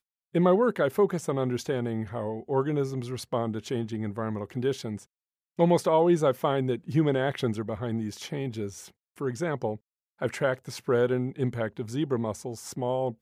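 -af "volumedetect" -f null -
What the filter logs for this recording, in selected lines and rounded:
mean_volume: -28.0 dB
max_volume: -9.9 dB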